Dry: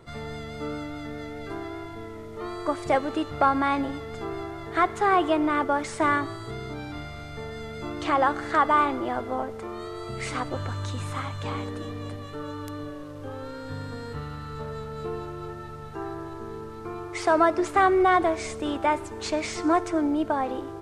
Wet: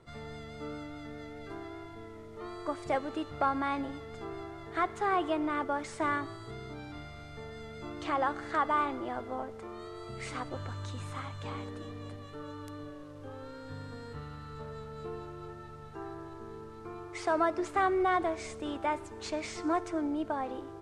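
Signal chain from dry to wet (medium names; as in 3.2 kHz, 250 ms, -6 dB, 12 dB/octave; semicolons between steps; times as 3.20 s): low-pass 11 kHz 12 dB/octave; trim -8 dB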